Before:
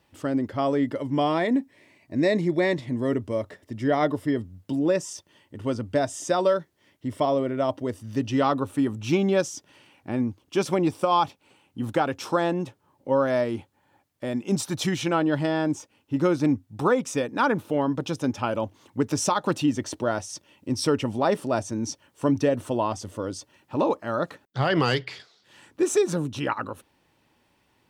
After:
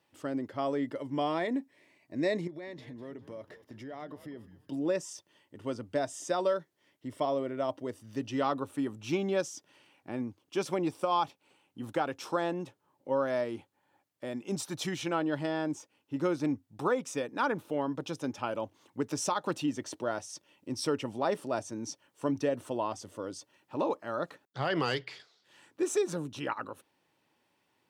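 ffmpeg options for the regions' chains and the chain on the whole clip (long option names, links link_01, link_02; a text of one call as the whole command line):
ffmpeg -i in.wav -filter_complex "[0:a]asettb=1/sr,asplit=3[link_01][link_02][link_03];[link_01]atrim=end=2.474[link_04];[link_02]atrim=start=2.47:end=4.72,asetpts=PTS-STARTPTS,afade=type=in:duration=0.004:curve=qsin,afade=type=out:start_time=2.246:duration=0.004:curve=qsin,equalizer=frequency=8200:width=4.2:gain=-10,acompressor=threshold=-31dB:ratio=10:attack=3.2:release=140:knee=1:detection=peak,asplit=5[link_05][link_06][link_07][link_08][link_09];[link_06]adelay=201,afreqshift=-100,volume=-14.5dB[link_10];[link_07]adelay=402,afreqshift=-200,volume=-22.2dB[link_11];[link_08]adelay=603,afreqshift=-300,volume=-30dB[link_12];[link_09]adelay=804,afreqshift=-400,volume=-37.7dB[link_13];[link_05][link_10][link_11][link_12][link_13]amix=inputs=5:normalize=0,atrim=end_sample=99225[link_14];[link_03]atrim=start=4.716[link_15];[link_04][link_14]acrossfade=duration=0.004:curve1=hsin:curve2=qsin[link_16];[link_16][link_15]acrossfade=duration=0.004:curve1=qsin:curve2=hsin,highpass=150,equalizer=frequency=220:width_type=o:width=0.55:gain=-3.5,volume=-7dB" out.wav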